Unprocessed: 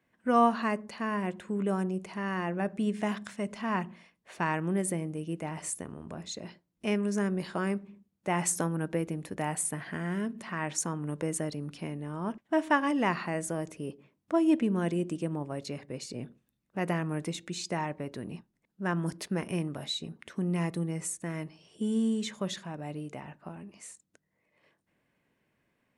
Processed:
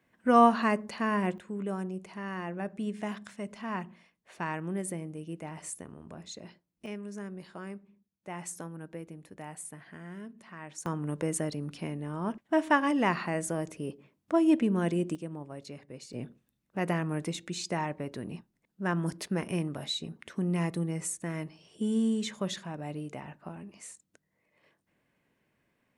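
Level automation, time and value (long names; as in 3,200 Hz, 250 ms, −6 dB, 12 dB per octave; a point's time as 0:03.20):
+3 dB
from 0:01.38 −4.5 dB
from 0:06.86 −11 dB
from 0:10.86 +1 dB
from 0:15.15 −6.5 dB
from 0:16.13 +0.5 dB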